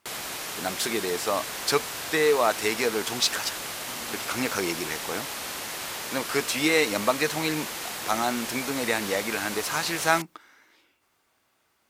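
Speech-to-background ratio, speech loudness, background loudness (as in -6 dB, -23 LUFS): 5.5 dB, -27.0 LUFS, -32.5 LUFS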